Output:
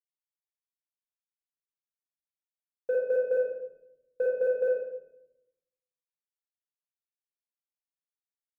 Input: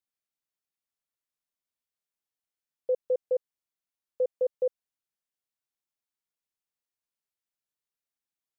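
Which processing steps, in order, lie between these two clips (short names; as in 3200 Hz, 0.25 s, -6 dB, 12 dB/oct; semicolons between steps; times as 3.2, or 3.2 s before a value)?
soft clip -22.5 dBFS, distortion -20 dB; bit-crush 12-bit; shoebox room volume 240 m³, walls mixed, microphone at 1.8 m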